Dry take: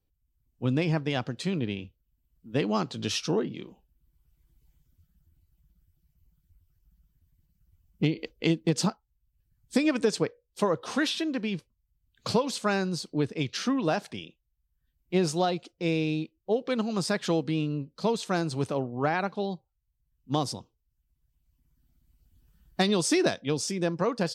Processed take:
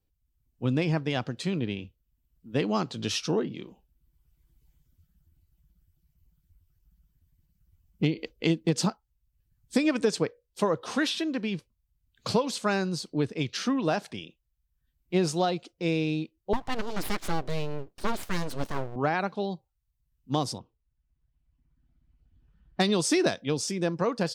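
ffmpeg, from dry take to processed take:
-filter_complex "[0:a]asettb=1/sr,asplit=3[a][b][c];[a]atrim=end=16.534[d];[b]atrim=start=16.53:end=18.96,asetpts=PTS-STARTPTS,afade=t=in:d=0.004:c=qsin,afade=t=out:st=2.426:d=0.004:c=qsin,aeval=exprs='abs(val(0))':c=same[e];[c]atrim=start=18.956[f];[d][e]acrossfade=d=0.004:c1=hsin:c2=qsin[g];[g][f]acrossfade=d=0.004:c1=qsin:c2=hsin,asettb=1/sr,asplit=3[h][i][j];[h]atrim=end=20.584[k];[i]atrim=start=20.58:end=22.8,asetpts=PTS-STARTPTS,afade=t=in:d=0.004:c=qsin,afade=t=out:st=2.216:d=0.004:c=qsin,lowpass=2.5k[l];[j]atrim=start=22.796[m];[k][l]acrossfade=d=0.004:c1=hsin:c2=qsin[n];[n][m]acrossfade=d=0.004:c1=qsin:c2=hsin"

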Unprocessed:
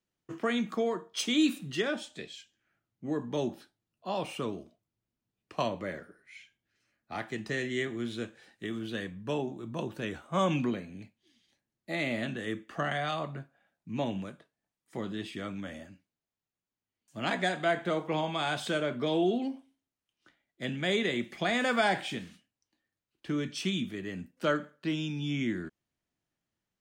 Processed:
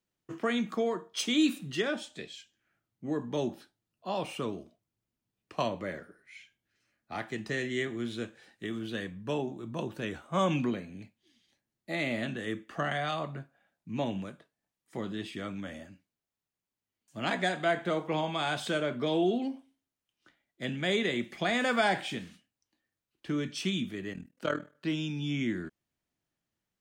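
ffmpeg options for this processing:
-filter_complex "[0:a]asettb=1/sr,asplit=3[a][b][c];[a]atrim=end=24.134[d];[b]atrim=start=24.13:end=24.75,asetpts=PTS-STARTPTS,afade=t=in:d=0.004:c=qsin,afade=t=out:st=0.616:d=0.004:c=qsin,tremolo=f=40:d=0.857[e];[c]atrim=start=24.746[f];[d][e]acrossfade=d=0.004:c1=hsin:c2=qsin[g];[g][f]acrossfade=d=0.004:c1=qsin:c2=hsin"

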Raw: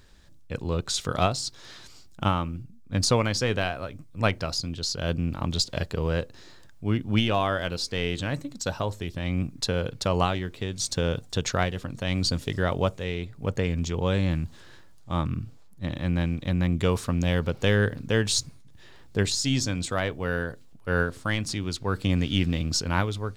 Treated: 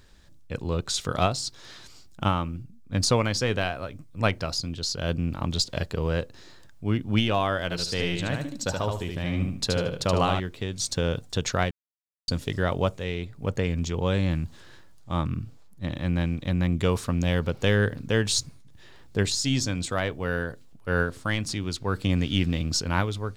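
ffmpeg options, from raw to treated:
-filter_complex "[0:a]asettb=1/sr,asplit=3[a][b][c];[a]atrim=end=7.634[d];[b]atrim=start=7.63:end=10.4,asetpts=PTS-STARTPTS,afade=t=in:d=0.004:c=qsin,afade=t=out:st=2.766:d=0.004:c=qsin,aecho=1:1:75|150|225|300:0.631|0.17|0.046|0.0124,atrim=end_sample=122157[e];[c]atrim=start=10.396[f];[d][e]acrossfade=d=0.004:c1=hsin:c2=qsin[g];[g][f]acrossfade=d=0.004:c1=qsin:c2=hsin,asplit=3[h][i][j];[h]atrim=end=11.71,asetpts=PTS-STARTPTS,afade=t=out:st=11.706:d=0.004:c=hsin[k];[i]atrim=start=11.71:end=12.28,asetpts=PTS-STARTPTS,volume=0[l];[j]atrim=start=12.28,asetpts=PTS-STARTPTS,afade=t=in:d=0.004:c=hsin[m];[k][l][m]concat=n=3:v=0:a=1"

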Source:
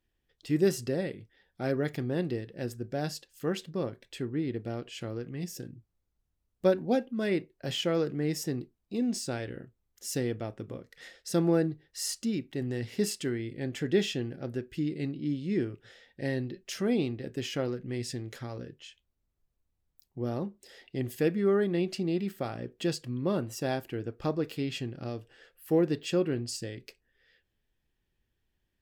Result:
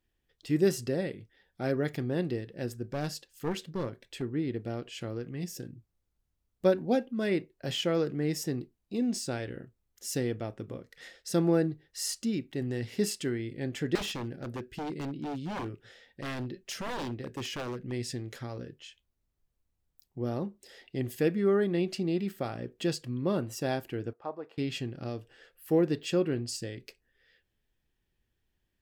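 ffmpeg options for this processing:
-filter_complex "[0:a]asettb=1/sr,asplit=3[a][b][c];[a]atrim=end=2.904[d];[b]atrim=start=2.9:end=4.22,asetpts=PTS-STARTPTS,afade=t=in:d=0.004:c=qsin,afade=t=out:st=1.316:d=0.004:c=qsin,aeval=exprs='clip(val(0),-1,0.0224)':c=same[e];[c]atrim=start=4.216[f];[d][e]acrossfade=d=0.004:c1=hsin:c2=qsin[g];[g][f]acrossfade=d=0.004:c1=qsin:c2=hsin,asettb=1/sr,asplit=3[h][i][j];[h]atrim=end=13.954[k];[i]atrim=start=13.95:end=17.92,asetpts=PTS-STARTPTS,afade=t=in:d=0.004:c=qsin,afade=t=out:st=3.966:d=0.004:c=qsin,aeval=exprs='0.0316*(abs(mod(val(0)/0.0316+3,4)-2)-1)':c=same[l];[j]atrim=start=17.916[m];[k][l]acrossfade=d=0.004:c1=hsin:c2=qsin[n];[n][m]acrossfade=d=0.004:c1=qsin:c2=hsin,asettb=1/sr,asplit=3[o][p][q];[o]atrim=end=24.134[r];[p]atrim=start=24.13:end=24.58,asetpts=PTS-STARTPTS,afade=t=in:d=0.004:c=qsin,afade=t=out:st=0.446:d=0.004:c=qsin,bandpass=f=850:t=q:w=2[s];[q]atrim=start=24.576[t];[r][s]acrossfade=d=0.004:c1=hsin:c2=qsin[u];[u][t]acrossfade=d=0.004:c1=qsin:c2=hsin"

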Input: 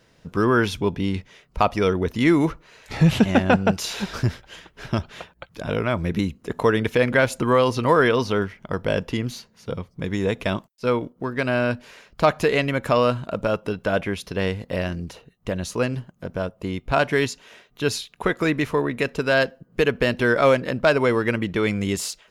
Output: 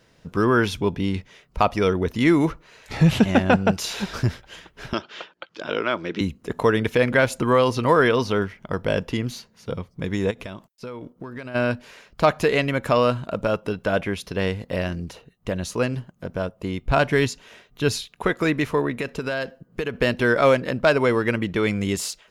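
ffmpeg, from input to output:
-filter_complex "[0:a]asettb=1/sr,asplit=3[a][b][c];[a]atrim=end=4.934[d];[b]atrim=start=4.93:end=6.21,asetpts=PTS-STARTPTS,afade=t=in:d=0.004:c=qsin,afade=t=out:st=1.276:d=0.004:c=qsin,highpass=320,equalizer=f=330:t=q:w=4:g=5,equalizer=f=720:t=q:w=4:g=-3,equalizer=f=1.4k:t=q:w=4:g=4,equalizer=f=3.1k:t=q:w=4:g=6,equalizer=f=4.8k:t=q:w=4:g=3,lowpass=f=6.5k:w=0.5412,lowpass=f=6.5k:w=1.3066[e];[c]atrim=start=6.206[f];[d][e]acrossfade=d=0.004:c1=hsin:c2=qsin[g];[g][f]acrossfade=d=0.004:c1=qsin:c2=hsin,asplit=3[h][i][j];[h]afade=t=out:st=10.3:d=0.02[k];[i]acompressor=threshold=-31dB:ratio=6:attack=3.2:release=140:knee=1:detection=peak,afade=t=in:st=10.3:d=0.02,afade=t=out:st=11.54:d=0.02[l];[j]afade=t=in:st=11.54:d=0.02[m];[k][l][m]amix=inputs=3:normalize=0,asettb=1/sr,asplit=3[n][o][p];[n]atrim=end=16.814[q];[o]atrim=start=16.81:end=18.08,asetpts=PTS-STARTPTS,afade=t=in:d=0.004:c=qsin,afade=t=out:st=1.266:d=0.004:c=qsin,lowshelf=f=140:g=8[r];[p]atrim=start=18.076[s];[q][r]acrossfade=d=0.004:c1=hsin:c2=qsin[t];[t][s]acrossfade=d=0.004:c1=qsin:c2=hsin,asettb=1/sr,asplit=3[u][v][w];[u]atrim=end=18.944[x];[v]atrim=start=18.94:end=19.94,asetpts=PTS-STARTPTS,afade=t=in:d=0.004:c=qsin,afade=t=out:st=0.996:d=0.004:c=qsin,acompressor=threshold=-22dB:ratio=5:attack=3.2:release=140:knee=1:detection=peak[y];[w]atrim=start=19.936[z];[x][y]acrossfade=d=0.004:c1=hsin:c2=qsin[aa];[aa][z]acrossfade=d=0.004:c1=qsin:c2=hsin"

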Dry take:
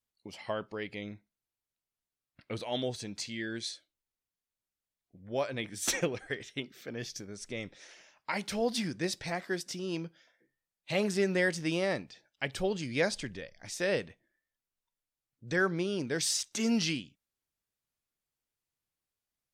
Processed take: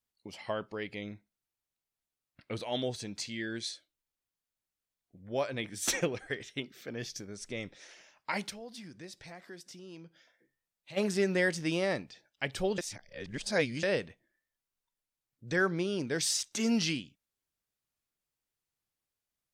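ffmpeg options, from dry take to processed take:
-filter_complex "[0:a]asplit=3[a][b][c];[a]afade=t=out:st=8.49:d=0.02[d];[b]acompressor=threshold=-55dB:ratio=2:attack=3.2:release=140:knee=1:detection=peak,afade=t=in:st=8.49:d=0.02,afade=t=out:st=10.96:d=0.02[e];[c]afade=t=in:st=10.96:d=0.02[f];[d][e][f]amix=inputs=3:normalize=0,asplit=3[g][h][i];[g]atrim=end=12.782[j];[h]atrim=start=12.778:end=13.832,asetpts=PTS-STARTPTS,areverse[k];[i]atrim=start=13.828[l];[j][k]acrossfade=d=0.004:c1=hsin:c2=hsin[m];[m][l]acrossfade=d=0.004:c1=hsin:c2=hsin"

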